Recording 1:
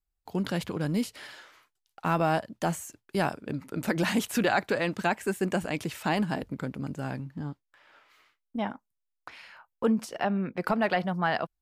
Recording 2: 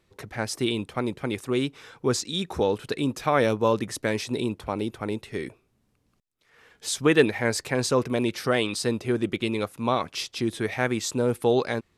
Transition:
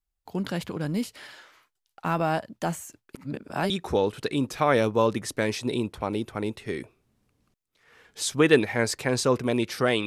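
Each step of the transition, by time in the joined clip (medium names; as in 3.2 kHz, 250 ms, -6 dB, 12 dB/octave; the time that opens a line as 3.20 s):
recording 1
3.15–3.70 s: reverse
3.70 s: go over to recording 2 from 2.36 s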